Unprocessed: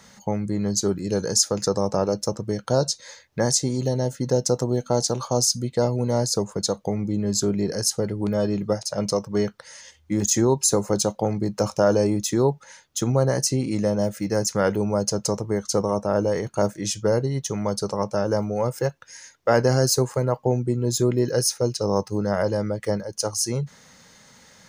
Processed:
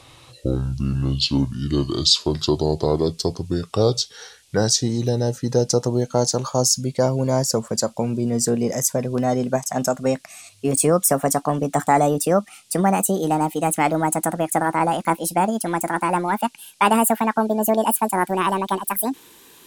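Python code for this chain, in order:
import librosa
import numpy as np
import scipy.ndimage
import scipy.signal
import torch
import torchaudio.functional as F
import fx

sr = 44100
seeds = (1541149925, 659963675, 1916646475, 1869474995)

y = fx.speed_glide(x, sr, from_pct=59, to_pct=192)
y = fx.dmg_noise_band(y, sr, seeds[0], low_hz=2500.0, high_hz=11000.0, level_db=-60.0)
y = y * librosa.db_to_amplitude(2.5)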